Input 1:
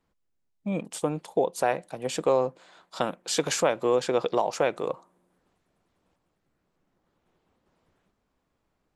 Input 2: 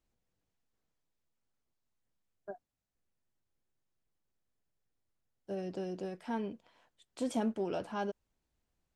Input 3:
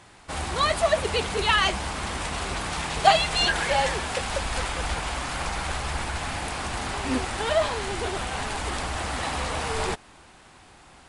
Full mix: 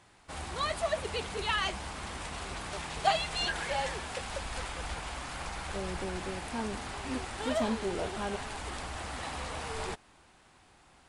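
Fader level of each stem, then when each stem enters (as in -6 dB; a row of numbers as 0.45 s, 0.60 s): mute, 0.0 dB, -9.5 dB; mute, 0.25 s, 0.00 s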